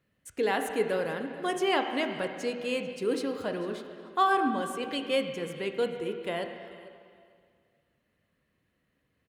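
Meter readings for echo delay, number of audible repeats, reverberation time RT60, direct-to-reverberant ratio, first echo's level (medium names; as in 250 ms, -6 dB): 443 ms, 2, 2.1 s, 5.0 dB, -20.0 dB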